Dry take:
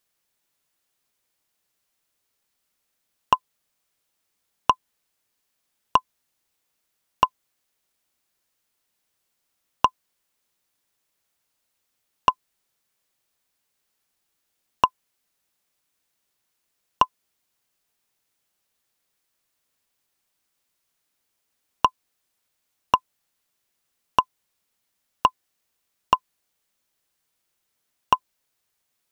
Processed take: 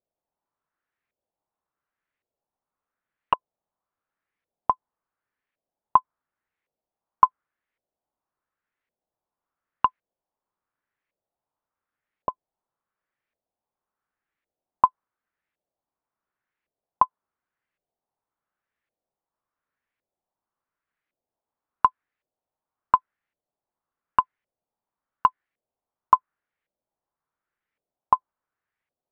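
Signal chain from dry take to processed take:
auto-filter low-pass saw up 0.9 Hz 570–2,200 Hz
dynamic equaliser 1,400 Hz, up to +4 dB, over −28 dBFS, Q 1
level −7 dB

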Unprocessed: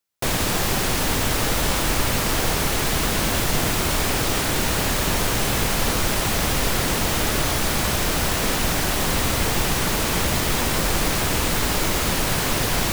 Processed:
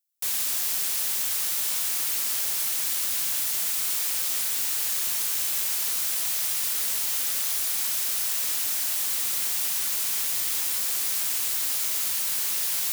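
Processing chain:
high-pass filter 78 Hz 12 dB per octave
first-order pre-emphasis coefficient 0.97
level −1.5 dB

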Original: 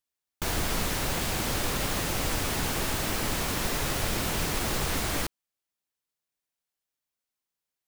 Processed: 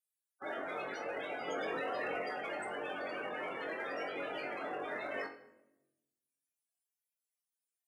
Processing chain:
spectral peaks only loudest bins 32
Bessel high-pass filter 770 Hz, order 4
frequency shifter −63 Hz
rectangular room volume 340 cubic metres, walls mixed, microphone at 0.42 metres
in parallel at −10.5 dB: hard clipping −37.5 dBFS, distortion −16 dB
on the sum: graphic EQ with 15 bands 1,000 Hz −11 dB, 4,000 Hz −8 dB, 10,000 Hz +9 dB
on a send: flutter between parallel walls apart 3.7 metres, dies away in 0.24 s
0:01.48–0:02.22: on the sum: envelope flattener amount 100%
level +1 dB

